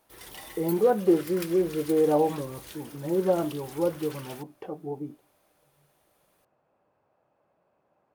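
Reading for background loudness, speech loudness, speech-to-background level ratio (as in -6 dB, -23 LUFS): -43.0 LUFS, -26.5 LUFS, 16.5 dB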